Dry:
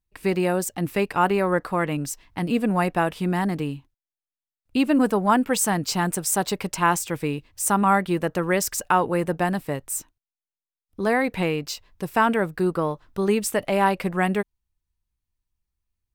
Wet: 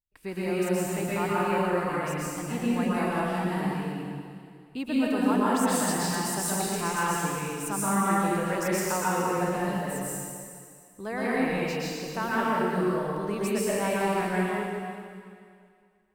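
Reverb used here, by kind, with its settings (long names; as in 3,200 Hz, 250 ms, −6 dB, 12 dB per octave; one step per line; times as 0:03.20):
dense smooth reverb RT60 2.2 s, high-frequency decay 1×, pre-delay 105 ms, DRR −8.5 dB
level −13 dB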